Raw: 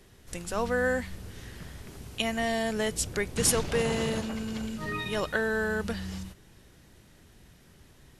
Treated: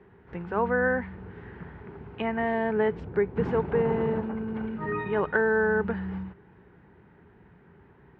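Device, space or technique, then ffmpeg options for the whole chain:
bass cabinet: -filter_complex "[0:a]asettb=1/sr,asplit=3[link_01][link_02][link_03];[link_01]atrim=end=3.004[link_04];[link_02]atrim=start=3:end=4.57,asetpts=PTS-STARTPTS,afade=type=in:duration=0.004:curve=qsin,afade=type=out:start_time=1.566:duration=0.004:curve=qsin,equalizer=frequency=2500:width_type=o:width=2.9:gain=-5.5[link_05];[link_03]atrim=start=4.566[link_06];[link_04][link_05]acrossfade=duration=0.004:curve1=hsin:curve2=qsin[link_07];[link_07][link_06]acrossfade=duration=0.004:curve1=qsin:curve2=hsin,highpass=68,equalizer=frequency=180:width_type=q:width=4:gain=6,equalizer=frequency=410:width_type=q:width=4:gain=9,equalizer=frequency=590:width_type=q:width=4:gain=-4,equalizer=frequency=890:width_type=q:width=4:gain=9,equalizer=frequency=1500:width_type=q:width=4:gain=4,lowpass=frequency=2100:width=0.5412,lowpass=frequency=2100:width=1.3066"

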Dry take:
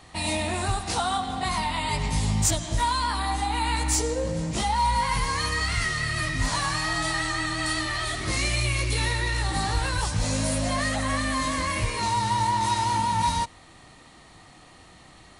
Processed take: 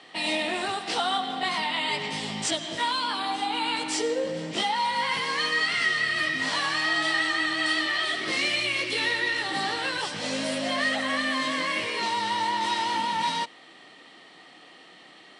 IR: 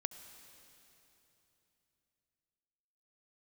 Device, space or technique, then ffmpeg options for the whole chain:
television speaker: -filter_complex "[0:a]highpass=frequency=210:width=0.5412,highpass=frequency=210:width=1.3066,equalizer=frequency=220:width_type=q:width=4:gain=-3,equalizer=frequency=440:width_type=q:width=4:gain=3,equalizer=frequency=990:width_type=q:width=4:gain=-4,equalizer=frequency=1900:width_type=q:width=4:gain=4,equalizer=frequency=3100:width_type=q:width=4:gain=8,equalizer=frequency=6700:width_type=q:width=4:gain=-9,lowpass=frequency=7600:width=0.5412,lowpass=frequency=7600:width=1.3066,asettb=1/sr,asplit=3[link_01][link_02][link_03];[link_01]atrim=end=2.914[link_04];[link_02]atrim=start=2.91:end=3.94,asetpts=PTS-STARTPTS,afade=type=in:duration=0.004:curve=qsin,afade=type=out:start_time=1.026:duration=0.004:curve=qsin,bandreject=frequency=1900:width=6.2[link_05];[link_03]atrim=start=3.936[link_06];[link_04][link_05]acrossfade=duration=0.004:curve1=hsin:curve2=qsin[link_07];[link_07][link_06]acrossfade=duration=0.004:curve1=qsin:curve2=hsin"

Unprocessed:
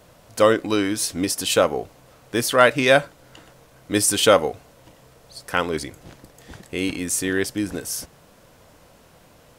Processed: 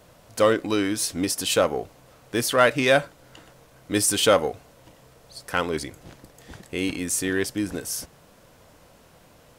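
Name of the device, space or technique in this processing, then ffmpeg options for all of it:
parallel distortion: -filter_complex "[0:a]asplit=2[link_01][link_02];[link_02]asoftclip=type=hard:threshold=-18dB,volume=-8dB[link_03];[link_01][link_03]amix=inputs=2:normalize=0,volume=-4.5dB"

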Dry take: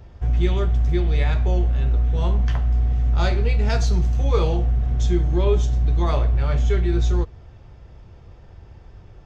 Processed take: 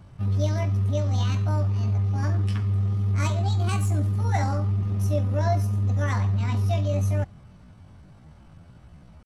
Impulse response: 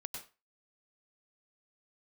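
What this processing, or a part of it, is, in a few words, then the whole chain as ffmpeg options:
chipmunk voice: -af "asetrate=74167,aresample=44100,atempo=0.594604,volume=-5dB"

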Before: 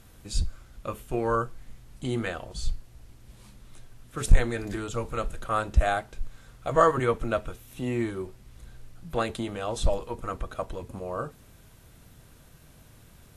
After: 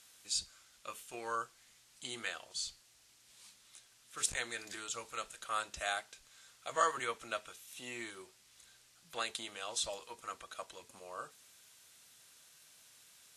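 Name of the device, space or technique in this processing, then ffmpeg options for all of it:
piezo pickup straight into a mixer: -af "lowpass=6800,aderivative,volume=6.5dB"

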